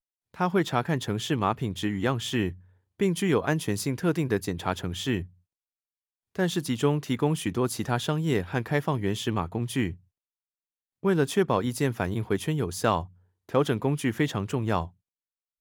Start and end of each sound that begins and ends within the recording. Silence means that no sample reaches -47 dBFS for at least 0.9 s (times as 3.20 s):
6.35–9.97 s